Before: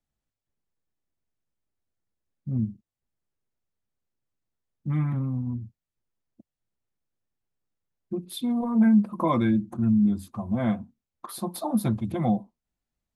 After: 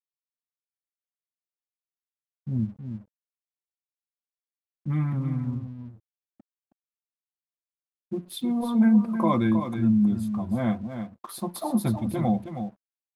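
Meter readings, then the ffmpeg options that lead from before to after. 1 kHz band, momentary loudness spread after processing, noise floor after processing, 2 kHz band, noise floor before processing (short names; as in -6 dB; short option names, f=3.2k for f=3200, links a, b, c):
+0.5 dB, 17 LU, under -85 dBFS, +0.5 dB, under -85 dBFS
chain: -af "aecho=1:1:318:0.376,aeval=exprs='sgn(val(0))*max(abs(val(0))-0.00158,0)':c=same"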